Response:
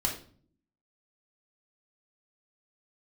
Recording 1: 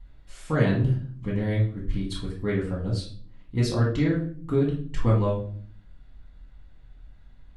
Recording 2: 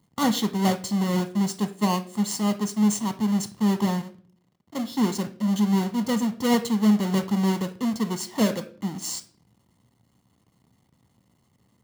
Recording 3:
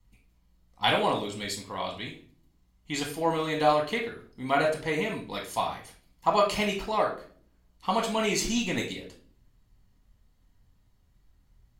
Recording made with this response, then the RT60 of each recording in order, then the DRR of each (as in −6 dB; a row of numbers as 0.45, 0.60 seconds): 3; 0.50, 0.50, 0.50 seconds; −6.0, 8.0, −1.0 decibels